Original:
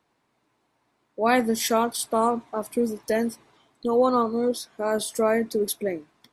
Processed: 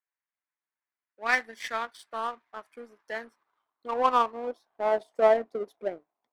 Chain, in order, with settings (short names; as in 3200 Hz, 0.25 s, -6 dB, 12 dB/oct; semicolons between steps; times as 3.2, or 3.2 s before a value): band-pass sweep 1800 Hz -> 720 Hz, 2.45–5.03; power-law curve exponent 1.4; gain +7 dB